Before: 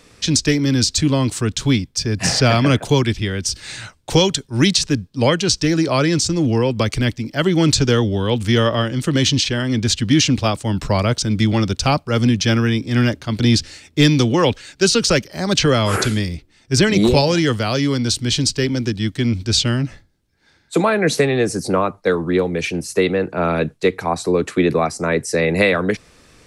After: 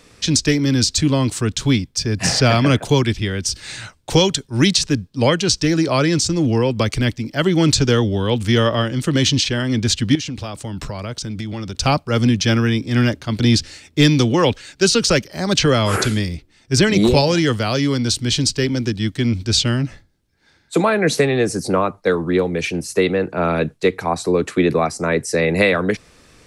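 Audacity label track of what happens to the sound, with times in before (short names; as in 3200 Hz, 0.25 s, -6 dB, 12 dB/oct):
10.150000	11.750000	compressor 8:1, threshold -23 dBFS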